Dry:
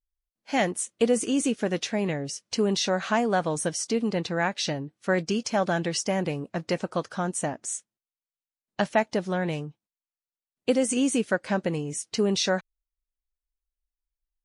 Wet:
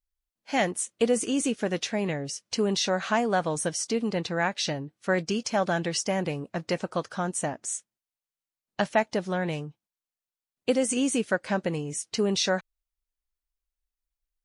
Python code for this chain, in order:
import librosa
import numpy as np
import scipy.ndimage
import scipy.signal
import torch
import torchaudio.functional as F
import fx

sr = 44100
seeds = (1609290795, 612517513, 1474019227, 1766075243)

y = fx.peak_eq(x, sr, hz=260.0, db=-2.0, octaves=1.8)